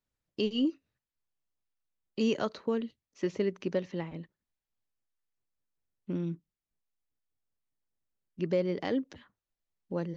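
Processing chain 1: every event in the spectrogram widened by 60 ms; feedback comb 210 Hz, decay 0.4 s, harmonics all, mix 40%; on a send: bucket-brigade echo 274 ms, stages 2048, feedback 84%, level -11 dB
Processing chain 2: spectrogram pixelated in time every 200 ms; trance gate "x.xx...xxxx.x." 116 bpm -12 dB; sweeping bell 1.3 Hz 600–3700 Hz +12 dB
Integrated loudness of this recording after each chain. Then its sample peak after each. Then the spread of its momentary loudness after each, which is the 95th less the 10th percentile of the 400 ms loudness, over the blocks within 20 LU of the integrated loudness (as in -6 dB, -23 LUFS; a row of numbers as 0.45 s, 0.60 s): -35.5 LUFS, -37.0 LUFS; -17.0 dBFS, -18.0 dBFS; 18 LU, 17 LU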